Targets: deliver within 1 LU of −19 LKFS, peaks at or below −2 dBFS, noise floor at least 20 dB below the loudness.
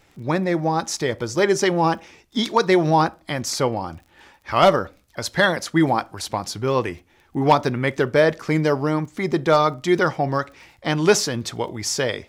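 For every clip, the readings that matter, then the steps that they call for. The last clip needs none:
crackle rate 25 per second; integrated loudness −21.0 LKFS; sample peak −5.5 dBFS; target loudness −19.0 LKFS
→ click removal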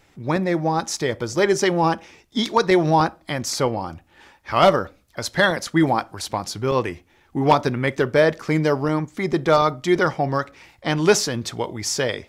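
crackle rate 0 per second; integrated loudness −21.0 LKFS; sample peak −5.0 dBFS; target loudness −19.0 LKFS
→ level +2 dB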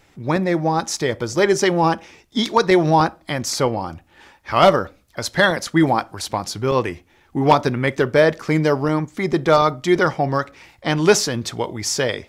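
integrated loudness −19.0 LKFS; sample peak −3.0 dBFS; background noise floor −56 dBFS

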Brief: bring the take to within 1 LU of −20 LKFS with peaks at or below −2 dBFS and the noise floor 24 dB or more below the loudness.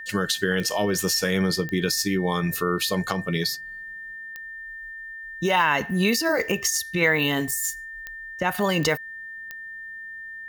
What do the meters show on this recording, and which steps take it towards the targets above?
number of clicks 7; interfering tone 1,800 Hz; level of the tone −35 dBFS; integrated loudness −23.5 LKFS; sample peak −7.5 dBFS; target loudness −20.0 LKFS
→ click removal
notch filter 1,800 Hz, Q 30
level +3.5 dB

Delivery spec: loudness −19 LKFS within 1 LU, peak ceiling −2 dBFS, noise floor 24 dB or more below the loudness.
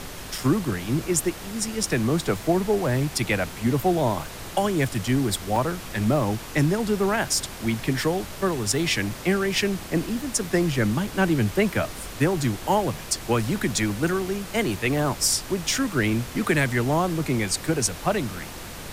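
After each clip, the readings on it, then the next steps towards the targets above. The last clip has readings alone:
number of dropouts 4; longest dropout 2.4 ms; background noise floor −38 dBFS; target noise floor −49 dBFS; integrated loudness −24.5 LKFS; sample peak −8.5 dBFS; target loudness −19.0 LKFS
→ repair the gap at 0:00.38/0:05.56/0:11.07/0:13.90, 2.4 ms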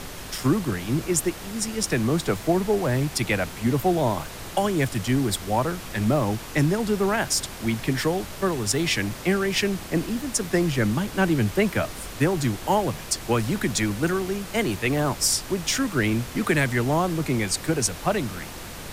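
number of dropouts 0; background noise floor −38 dBFS; target noise floor −49 dBFS
→ noise reduction from a noise print 11 dB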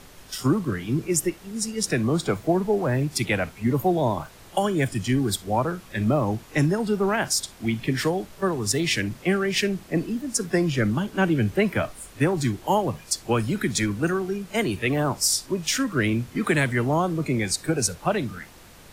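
background noise floor −48 dBFS; target noise floor −49 dBFS
→ noise reduction from a noise print 6 dB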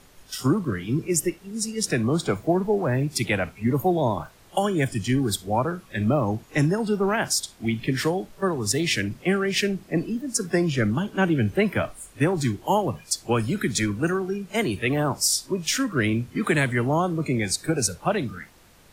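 background noise floor −53 dBFS; integrated loudness −24.5 LKFS; sample peak −9.0 dBFS; target loudness −19.0 LKFS
→ level +5.5 dB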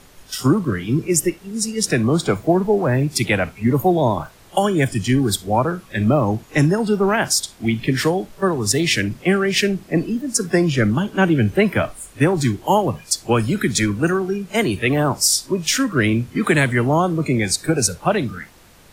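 integrated loudness −19.0 LKFS; sample peak −3.5 dBFS; background noise floor −47 dBFS

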